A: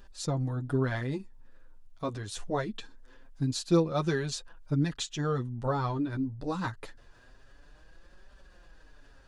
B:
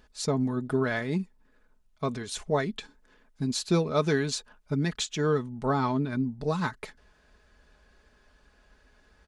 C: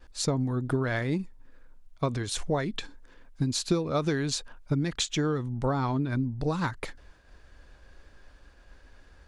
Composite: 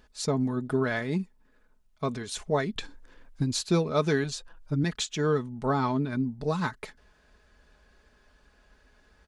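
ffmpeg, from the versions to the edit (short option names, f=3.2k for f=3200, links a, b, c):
-filter_complex "[1:a]asplit=3[a][b][c];[a]atrim=end=2.762[d];[2:a]atrim=start=2.758:end=3.612[e];[b]atrim=start=3.608:end=4.242[f];[0:a]atrim=start=4.238:end=4.842[g];[c]atrim=start=4.838[h];[d][e]acrossfade=d=0.004:c1=hsin:c2=hsin[i];[i][f]acrossfade=d=0.004:c1=hsin:c2=hsin[j];[j][g]acrossfade=d=0.004:c1=hsin:c2=hsin[k];[k][h]acrossfade=d=0.004:c1=hsin:c2=hsin"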